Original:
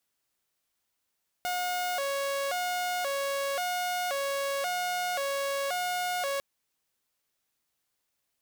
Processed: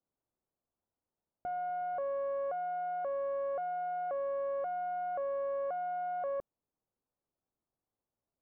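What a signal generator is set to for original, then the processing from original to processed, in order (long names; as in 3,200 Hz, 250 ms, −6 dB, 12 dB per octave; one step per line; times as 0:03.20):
siren hi-lo 555–720 Hz 0.94 per second saw −26 dBFS 4.95 s
Bessel low-pass filter 700 Hz, order 4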